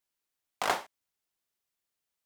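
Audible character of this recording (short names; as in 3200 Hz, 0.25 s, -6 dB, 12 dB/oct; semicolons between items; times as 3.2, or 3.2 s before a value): noise floor -87 dBFS; spectral tilt -2.5 dB/oct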